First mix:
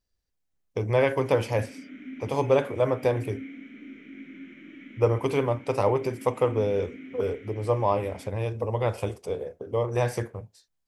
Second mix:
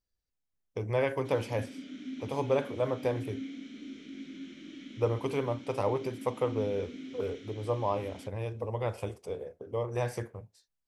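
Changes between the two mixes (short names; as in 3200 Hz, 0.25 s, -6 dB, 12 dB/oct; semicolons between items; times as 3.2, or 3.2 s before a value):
speech -6.5 dB; background: add resonant high shelf 3100 Hz +12.5 dB, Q 3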